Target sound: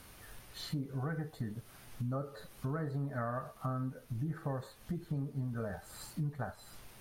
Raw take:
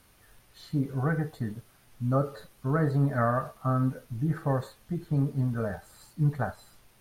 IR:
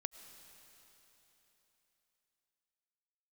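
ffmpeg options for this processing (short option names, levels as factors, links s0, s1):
-af "acompressor=threshold=0.00708:ratio=4,volume=1.88"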